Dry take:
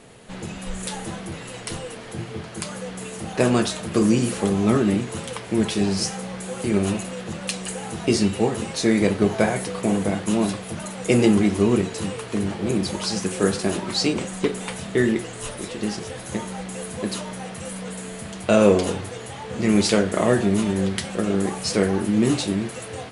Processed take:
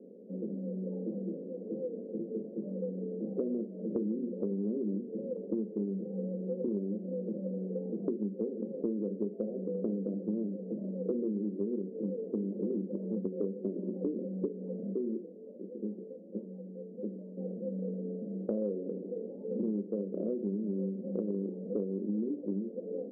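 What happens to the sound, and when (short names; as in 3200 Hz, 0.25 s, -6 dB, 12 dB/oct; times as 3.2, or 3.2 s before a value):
14.93–17.37 gain -9 dB
whole clip: Chebyshev band-pass 190–540 Hz, order 4; compressor 12:1, threshold -30 dBFS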